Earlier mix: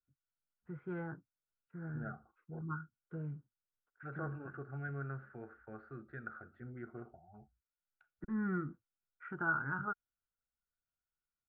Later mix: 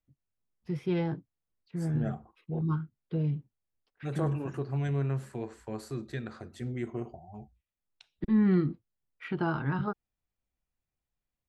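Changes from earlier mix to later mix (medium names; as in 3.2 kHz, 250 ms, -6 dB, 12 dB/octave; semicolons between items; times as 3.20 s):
second voice: remove Butterworth band-stop 1 kHz, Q 6.1; master: remove four-pole ladder low-pass 1.5 kHz, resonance 85%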